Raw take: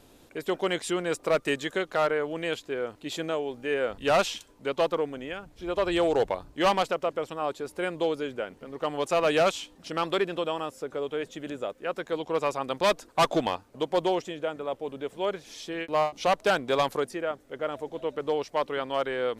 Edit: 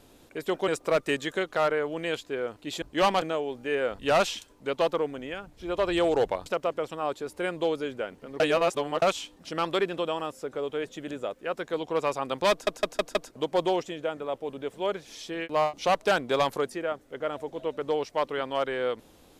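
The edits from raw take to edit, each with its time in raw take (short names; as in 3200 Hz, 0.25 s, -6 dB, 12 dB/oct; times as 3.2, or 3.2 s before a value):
0.68–1.07 cut
6.45–6.85 move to 3.21
8.79–9.41 reverse
12.9 stutter in place 0.16 s, 5 plays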